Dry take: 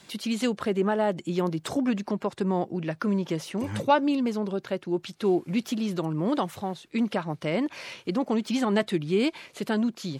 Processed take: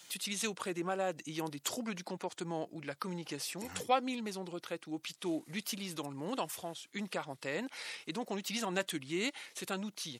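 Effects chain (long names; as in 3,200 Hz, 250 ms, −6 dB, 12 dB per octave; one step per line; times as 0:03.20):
pitch shifter −2 semitones
RIAA equalisation recording
level −7.5 dB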